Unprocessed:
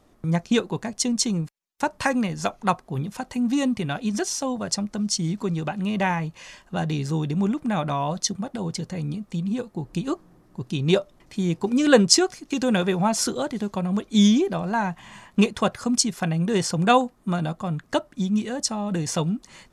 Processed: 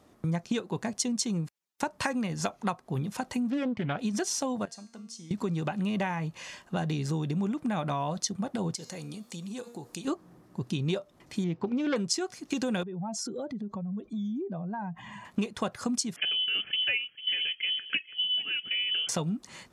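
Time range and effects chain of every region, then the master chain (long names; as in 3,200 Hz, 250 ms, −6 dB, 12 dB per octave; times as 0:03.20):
0:03.50–0:03.99: low-pass filter 3,100 Hz + highs frequency-modulated by the lows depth 0.29 ms
0:04.65–0:05.31: low-shelf EQ 170 Hz −11 dB + downward compressor 2.5 to 1, threshold −31 dBFS + tuned comb filter 230 Hz, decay 0.58 s, mix 80%
0:08.75–0:10.05: bass and treble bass −11 dB, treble +10 dB + hum removal 237.8 Hz, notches 33 + downward compressor 2.5 to 1, threshold −38 dBFS
0:11.44–0:11.96: phase distortion by the signal itself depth 0.24 ms + high-frequency loss of the air 200 metres
0:12.83–0:15.25: expanding power law on the bin magnitudes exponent 1.7 + downward compressor 5 to 1, threshold −33 dBFS
0:16.16–0:19.09: parametric band 2,200 Hz −12 dB 0.41 octaves + single-tap delay 446 ms −18.5 dB + voice inversion scrambler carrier 3,200 Hz
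whole clip: high-pass filter 77 Hz; downward compressor 6 to 1, threshold −27 dBFS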